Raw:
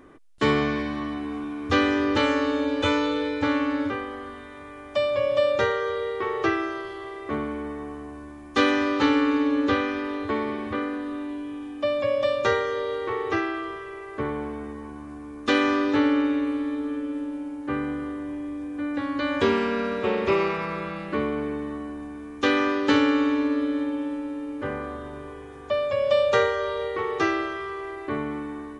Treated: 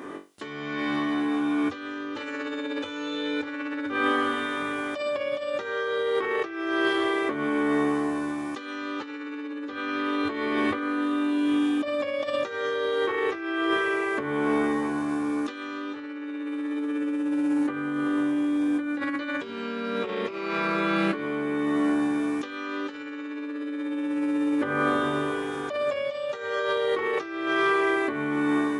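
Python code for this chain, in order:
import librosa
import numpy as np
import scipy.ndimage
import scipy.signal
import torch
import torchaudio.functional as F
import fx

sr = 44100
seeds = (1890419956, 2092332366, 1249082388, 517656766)

y = fx.room_flutter(x, sr, wall_m=3.6, rt60_s=0.29)
y = fx.over_compress(y, sr, threshold_db=-33.0, ratio=-1.0)
y = scipy.signal.sosfilt(scipy.signal.butter(2, 210.0, 'highpass', fs=sr, output='sos'), y)
y = y * librosa.db_to_amplitude(5.0)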